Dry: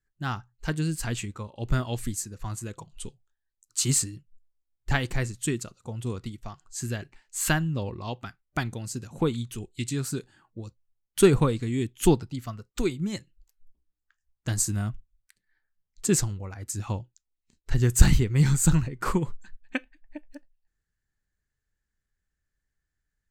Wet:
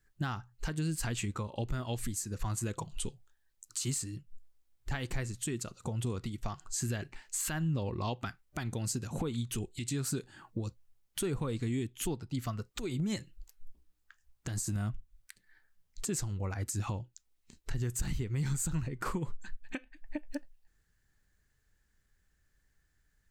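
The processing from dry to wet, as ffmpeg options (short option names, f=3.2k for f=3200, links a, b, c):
-filter_complex "[0:a]asettb=1/sr,asplit=3[a][b][c];[a]atrim=end=12.694[d];[b]atrim=start=12.69:end=14.76,asetpts=PTS-STARTPTS,afade=t=in:d=0.004:c=qsin,afade=t=out:st=2.066:d=0.004:c=qsin,acompressor=threshold=-32dB:ratio=6:attack=3.2:release=140:knee=1:detection=peak[e];[c]atrim=start=14.756[f];[d][e]acrossfade=d=0.004:c1=hsin:c2=qsin[g];[g][f]acrossfade=d=0.004:c1=qsin:c2=hsin,acompressor=threshold=-41dB:ratio=3,alimiter=level_in=9.5dB:limit=-24dB:level=0:latency=1:release=125,volume=-9.5dB,volume=9dB"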